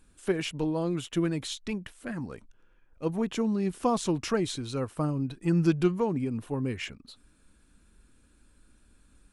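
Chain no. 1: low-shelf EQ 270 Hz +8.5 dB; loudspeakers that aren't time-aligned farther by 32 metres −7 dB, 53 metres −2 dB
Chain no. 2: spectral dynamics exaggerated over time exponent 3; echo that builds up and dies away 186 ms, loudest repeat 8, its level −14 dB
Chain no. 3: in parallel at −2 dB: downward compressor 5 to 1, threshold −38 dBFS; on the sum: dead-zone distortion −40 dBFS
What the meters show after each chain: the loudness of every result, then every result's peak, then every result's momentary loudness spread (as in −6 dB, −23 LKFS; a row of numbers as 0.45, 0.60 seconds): −23.5, −36.0, −30.0 LKFS; −4.0, −15.0, −11.0 dBFS; 12, 13, 12 LU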